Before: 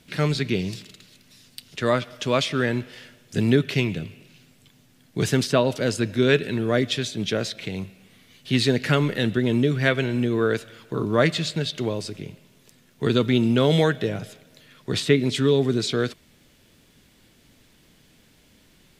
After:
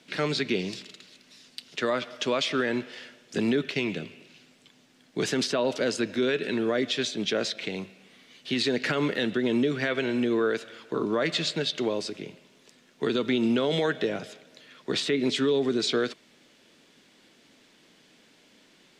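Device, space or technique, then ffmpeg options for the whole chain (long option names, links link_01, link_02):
DJ mixer with the lows and highs turned down: -filter_complex "[0:a]asettb=1/sr,asplit=3[link_01][link_02][link_03];[link_01]atrim=end=3.384[link_04];[link_02]atrim=start=3.38:end=3.83,asetpts=PTS-STARTPTS,afade=type=in:duration=0.004:curve=qsin,afade=type=out:start_time=0.446:duration=0.004:curve=qsin,agate=range=-7dB:threshold=-27dB:ratio=16:detection=peak[link_05];[link_03]atrim=start=3.826[link_06];[link_04][link_05]acrossfade=duration=0.004:curve1=hsin:curve2=qsin[link_07];[link_07][link_06]acrossfade=duration=0.004:curve1=qsin:curve2=hsin,acrossover=split=200 7900:gain=0.0708 1 0.158[link_08][link_09][link_10];[link_08][link_09][link_10]amix=inputs=3:normalize=0,alimiter=limit=-17.5dB:level=0:latency=1:release=80,volume=1dB"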